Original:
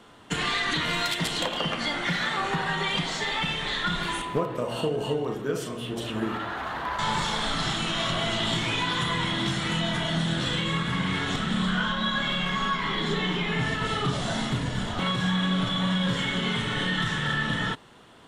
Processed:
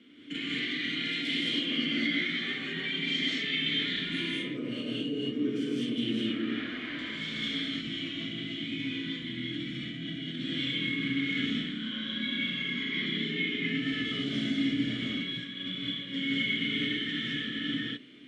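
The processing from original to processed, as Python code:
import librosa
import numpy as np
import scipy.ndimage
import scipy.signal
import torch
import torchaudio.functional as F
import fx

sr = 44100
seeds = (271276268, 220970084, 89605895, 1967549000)

y = fx.low_shelf(x, sr, hz=240.0, db=9.0, at=(7.6, 10.28))
y = fx.over_compress(y, sr, threshold_db=-30.0, ratio=-1.0)
y = fx.vowel_filter(y, sr, vowel='i')
y = fx.rev_gated(y, sr, seeds[0], gate_ms=240, shape='rising', drr_db=-4.5)
y = y * librosa.db_to_amplitude(4.5)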